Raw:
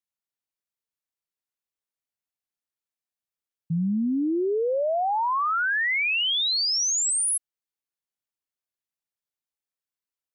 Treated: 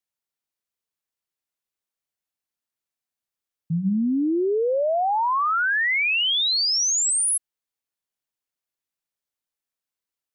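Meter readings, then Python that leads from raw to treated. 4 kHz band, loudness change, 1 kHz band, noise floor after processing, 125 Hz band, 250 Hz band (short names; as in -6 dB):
+2.5 dB, +2.5 dB, +2.5 dB, under -85 dBFS, +1.5 dB, +2.5 dB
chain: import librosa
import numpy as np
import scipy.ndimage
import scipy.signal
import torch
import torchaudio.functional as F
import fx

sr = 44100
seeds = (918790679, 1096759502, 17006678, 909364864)

y = fx.hum_notches(x, sr, base_hz=60, count=3)
y = F.gain(torch.from_numpy(y), 2.5).numpy()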